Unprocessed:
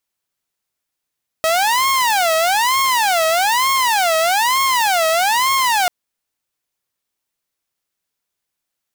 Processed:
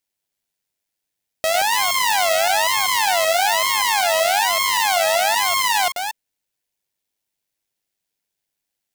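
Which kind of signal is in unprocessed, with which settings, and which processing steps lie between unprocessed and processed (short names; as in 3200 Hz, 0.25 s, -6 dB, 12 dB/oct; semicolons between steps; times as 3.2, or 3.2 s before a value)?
siren wail 640–1080 Hz 1.1/s saw -11 dBFS 4.44 s
reverse delay 0.191 s, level -6 dB; bell 1200 Hz -9 dB 0.44 oct; AM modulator 100 Hz, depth 25%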